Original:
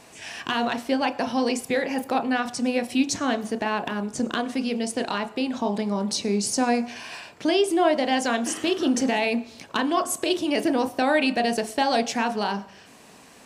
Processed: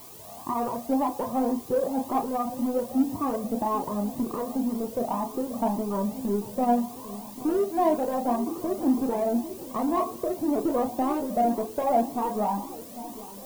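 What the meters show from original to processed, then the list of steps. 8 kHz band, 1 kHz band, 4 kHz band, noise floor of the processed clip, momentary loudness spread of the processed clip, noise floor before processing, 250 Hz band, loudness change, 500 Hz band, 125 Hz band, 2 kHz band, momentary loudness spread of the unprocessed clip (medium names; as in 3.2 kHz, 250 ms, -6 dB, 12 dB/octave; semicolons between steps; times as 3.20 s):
-11.5 dB, -1.0 dB, -19.5 dB, -42 dBFS, 7 LU, -50 dBFS, -2.0 dB, -2.5 dB, -2.0 dB, -1.0 dB, -20.0 dB, 7 LU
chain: Chebyshev low-pass 1.2 kHz, order 8; in parallel at -5 dB: saturation -26.5 dBFS, distortion -8 dB; on the sum: added noise blue -44 dBFS; on a send: filtered feedback delay 796 ms, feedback 69%, low-pass 830 Hz, level -14.5 dB; on the sum: Shepard-style flanger rising 1.9 Hz; trim +2 dB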